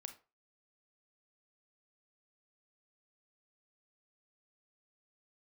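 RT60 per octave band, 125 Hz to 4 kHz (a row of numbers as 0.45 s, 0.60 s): 0.30 s, 0.25 s, 0.30 s, 0.30 s, 0.25 s, 0.20 s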